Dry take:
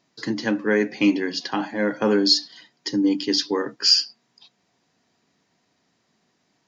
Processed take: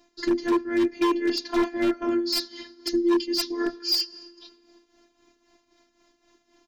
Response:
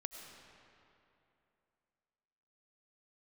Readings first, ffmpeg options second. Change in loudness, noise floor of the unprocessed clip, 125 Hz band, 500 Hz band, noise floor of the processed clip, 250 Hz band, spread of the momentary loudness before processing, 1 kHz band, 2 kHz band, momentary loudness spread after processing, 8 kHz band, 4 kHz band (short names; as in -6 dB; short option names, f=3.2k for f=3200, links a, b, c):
-4.0 dB, -70 dBFS, under -10 dB, -1.5 dB, -70 dBFS, -2.0 dB, 10 LU, +0.5 dB, -6.5 dB, 5 LU, n/a, -6.5 dB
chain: -filter_complex "[0:a]areverse,acompressor=threshold=-27dB:ratio=8,areverse,aecho=1:1:6.2:0.87,asplit=2[a][b];[1:a]atrim=start_sample=2205[c];[b][c]afir=irnorm=-1:irlink=0,volume=-9dB[d];[a][d]amix=inputs=2:normalize=0,tremolo=f=3.8:d=0.67,lowshelf=f=250:g=10.5,afftfilt=real='hypot(re,im)*cos(PI*b)':imag='0':win_size=512:overlap=0.75,aeval=exprs='0.0944*(abs(mod(val(0)/0.0944+3,4)-2)-1)':c=same,volume=5dB"